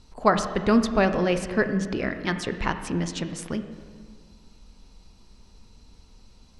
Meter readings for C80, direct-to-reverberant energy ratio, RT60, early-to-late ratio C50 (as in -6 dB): 11.0 dB, 8.0 dB, 1.7 s, 9.5 dB